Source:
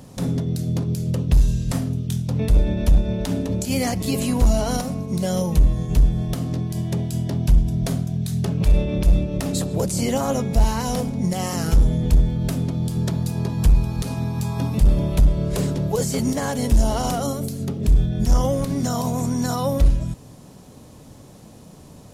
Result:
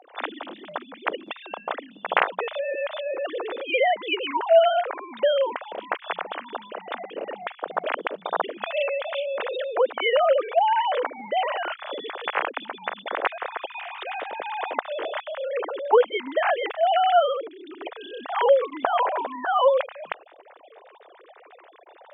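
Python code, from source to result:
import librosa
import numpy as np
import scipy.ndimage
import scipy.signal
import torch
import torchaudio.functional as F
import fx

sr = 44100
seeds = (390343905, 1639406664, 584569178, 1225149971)

y = fx.sine_speech(x, sr)
y = scipy.signal.sosfilt(scipy.signal.butter(4, 550.0, 'highpass', fs=sr, output='sos'), y)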